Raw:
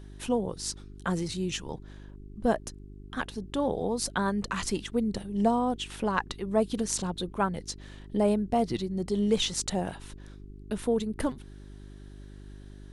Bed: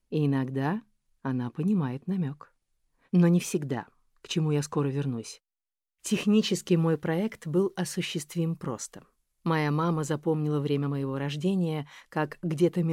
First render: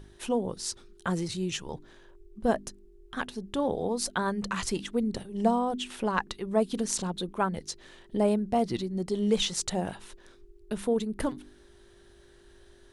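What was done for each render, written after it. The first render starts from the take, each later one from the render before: de-hum 50 Hz, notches 6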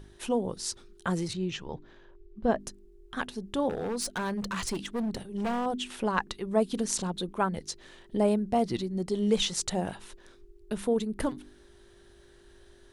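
1.33–2.60 s: distance through air 140 m; 3.69–5.66 s: hard clipper -27.5 dBFS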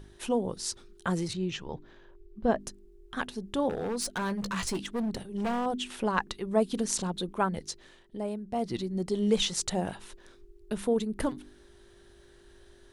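4.20–4.79 s: doubling 16 ms -9 dB; 7.64–8.90 s: dip -9.5 dB, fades 0.47 s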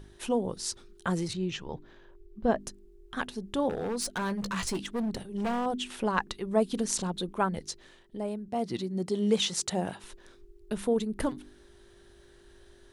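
8.48–10.04 s: high-pass 100 Hz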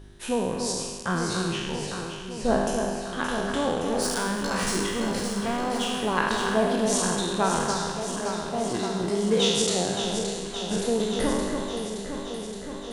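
spectral sustain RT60 1.40 s; echo whose repeats swap between lows and highs 285 ms, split 2.3 kHz, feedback 85%, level -6 dB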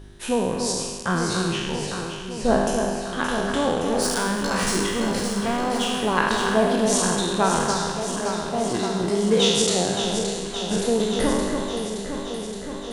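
trim +3.5 dB

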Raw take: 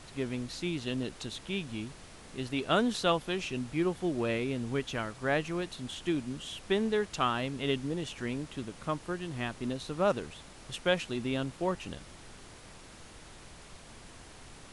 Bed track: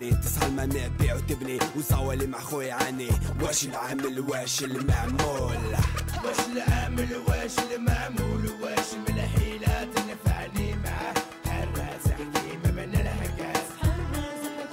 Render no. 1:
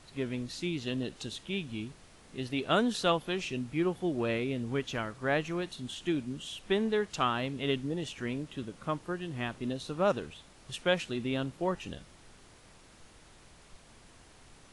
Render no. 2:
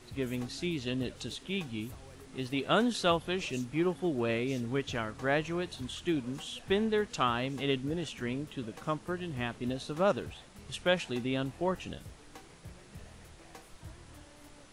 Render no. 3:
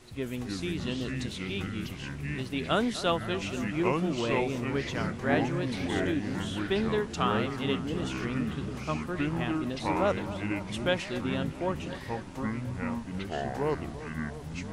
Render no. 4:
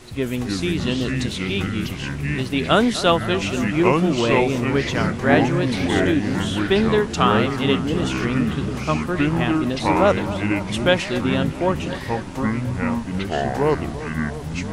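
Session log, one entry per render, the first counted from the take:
noise print and reduce 6 dB
add bed track -24.5 dB
on a send: feedback echo behind a low-pass 254 ms, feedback 77%, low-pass 2.3 kHz, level -14.5 dB; on the sum: ever faster or slower copies 241 ms, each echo -5 st, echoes 2
trim +10.5 dB

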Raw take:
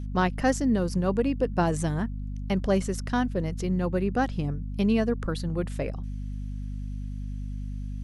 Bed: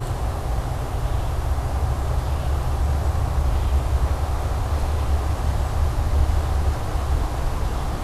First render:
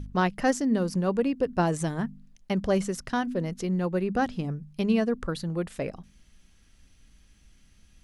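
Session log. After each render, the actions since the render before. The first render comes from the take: de-hum 50 Hz, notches 5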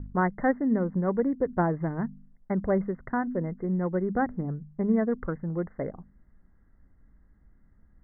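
local Wiener filter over 15 samples; Chebyshev low-pass 2.1 kHz, order 10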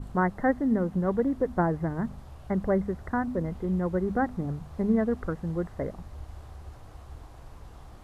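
add bed -22.5 dB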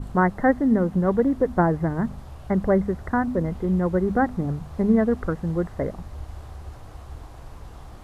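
trim +5.5 dB

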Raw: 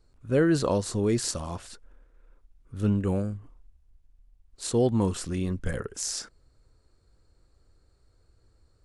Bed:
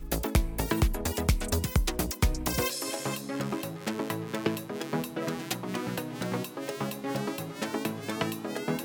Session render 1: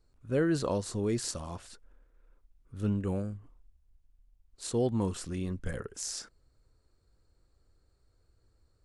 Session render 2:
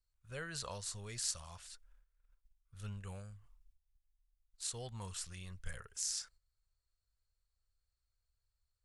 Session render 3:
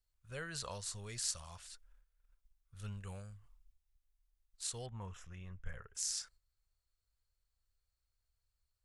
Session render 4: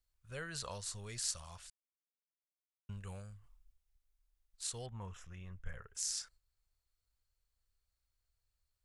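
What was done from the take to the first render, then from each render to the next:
trim -5.5 dB
gate -57 dBFS, range -10 dB; amplifier tone stack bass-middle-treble 10-0-10
4.86–5.95 s: boxcar filter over 10 samples
1.70–2.89 s: mute

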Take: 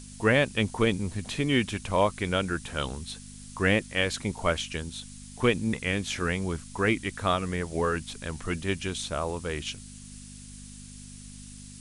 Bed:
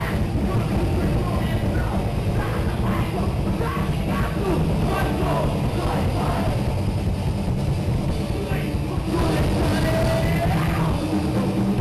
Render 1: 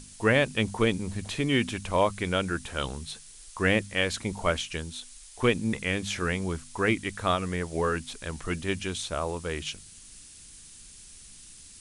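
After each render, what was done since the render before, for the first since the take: de-hum 50 Hz, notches 5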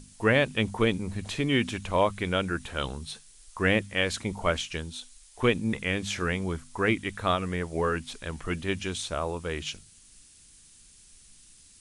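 noise print and reduce 6 dB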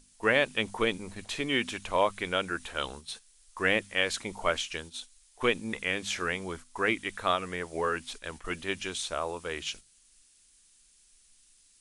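peaking EQ 110 Hz -13.5 dB 2.4 oct; gate -43 dBFS, range -7 dB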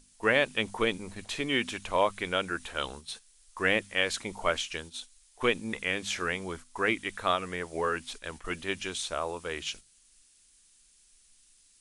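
no audible change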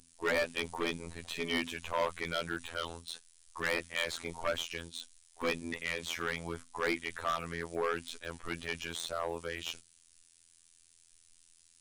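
robot voice 84 Hz; overload inside the chain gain 25 dB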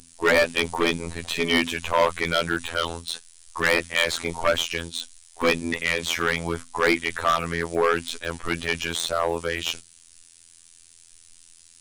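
trim +12 dB

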